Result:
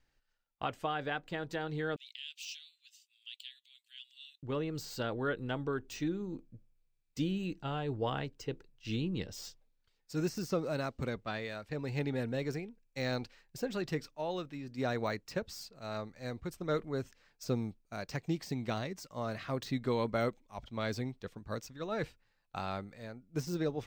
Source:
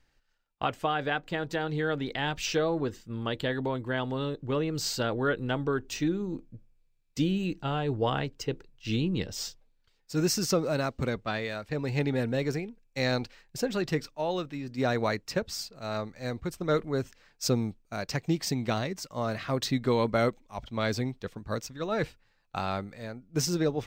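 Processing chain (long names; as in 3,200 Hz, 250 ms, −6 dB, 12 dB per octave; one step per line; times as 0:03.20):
0:01.96–0:04.43: elliptic high-pass filter 2,700 Hz, stop band 70 dB
de-essing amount 85%
level −6.5 dB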